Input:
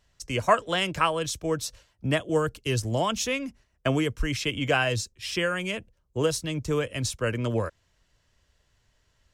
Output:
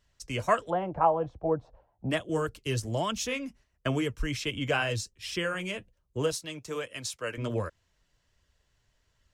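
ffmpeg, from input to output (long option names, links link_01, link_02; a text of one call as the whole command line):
ffmpeg -i in.wav -filter_complex "[0:a]asettb=1/sr,asplit=3[link_01][link_02][link_03];[link_01]atrim=end=6.334[link_04];[link_02]atrim=start=6.33:end=7.38,asetpts=PTS-STARTPTS,afade=type=in:duration=0.004:curve=qsin,afade=type=out:start_time=1.046:duration=0.004:curve=qsin,highpass=frequency=560:poles=1[link_05];[link_03]atrim=start=7.376[link_06];[link_04][link_05]acrossfade=duration=0.004:curve1=hsin:curve2=qsin[link_07];[link_07][link_06]acrossfade=duration=0.004:curve1=qsin:curve2=hsin,flanger=delay=0.6:depth=6.5:regen=-59:speed=1.3:shape=sinusoidal,asplit=3[link_08][link_09][link_10];[link_08]afade=type=out:start_time=0.69:duration=0.02[link_11];[link_09]lowpass=frequency=780:width_type=q:width=4.9,afade=type=in:start_time=0.69:duration=0.02,afade=type=out:start_time=2.09:duration=0.02[link_12];[link_10]afade=type=in:start_time=2.09:duration=0.02[link_13];[link_11][link_12][link_13]amix=inputs=3:normalize=0" out.wav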